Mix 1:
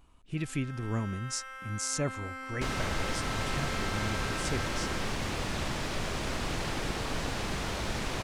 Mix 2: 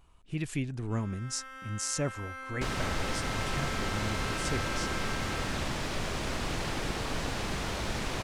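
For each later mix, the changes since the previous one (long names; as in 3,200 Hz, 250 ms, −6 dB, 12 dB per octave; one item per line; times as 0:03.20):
first sound: entry +0.55 s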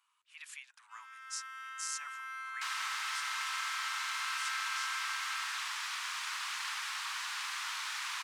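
speech −5.5 dB
master: add Butterworth high-pass 1,000 Hz 48 dB per octave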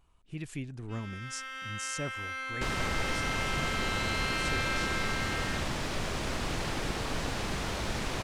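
first sound: add meter weighting curve D
master: remove Butterworth high-pass 1,000 Hz 48 dB per octave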